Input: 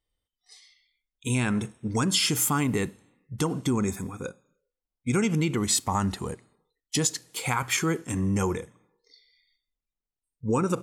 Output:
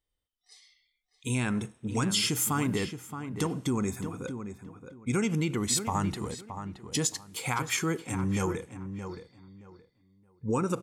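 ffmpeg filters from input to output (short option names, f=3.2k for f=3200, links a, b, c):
-filter_complex "[0:a]asplit=2[a][b];[b]adelay=622,lowpass=f=2.5k:p=1,volume=-9dB,asplit=2[c][d];[d]adelay=622,lowpass=f=2.5k:p=1,volume=0.23,asplit=2[e][f];[f]adelay=622,lowpass=f=2.5k:p=1,volume=0.23[g];[a][c][e][g]amix=inputs=4:normalize=0,volume=-3.5dB"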